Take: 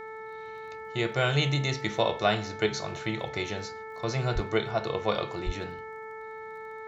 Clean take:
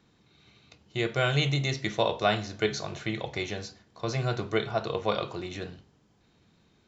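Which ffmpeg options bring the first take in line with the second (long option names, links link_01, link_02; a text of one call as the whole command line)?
ffmpeg -i in.wav -filter_complex "[0:a]adeclick=threshold=4,bandreject=frequency=439.8:width_type=h:width=4,bandreject=frequency=879.6:width_type=h:width=4,bandreject=frequency=1319.4:width_type=h:width=4,bandreject=frequency=1759.2:width_type=h:width=4,bandreject=frequency=2199:width_type=h:width=4,asplit=3[link_01][link_02][link_03];[link_01]afade=type=out:start_time=4.34:duration=0.02[link_04];[link_02]highpass=frequency=140:width=0.5412,highpass=frequency=140:width=1.3066,afade=type=in:start_time=4.34:duration=0.02,afade=type=out:start_time=4.46:duration=0.02[link_05];[link_03]afade=type=in:start_time=4.46:duration=0.02[link_06];[link_04][link_05][link_06]amix=inputs=3:normalize=0,asplit=3[link_07][link_08][link_09];[link_07]afade=type=out:start_time=5.45:duration=0.02[link_10];[link_08]highpass=frequency=140:width=0.5412,highpass=frequency=140:width=1.3066,afade=type=in:start_time=5.45:duration=0.02,afade=type=out:start_time=5.57:duration=0.02[link_11];[link_09]afade=type=in:start_time=5.57:duration=0.02[link_12];[link_10][link_11][link_12]amix=inputs=3:normalize=0" out.wav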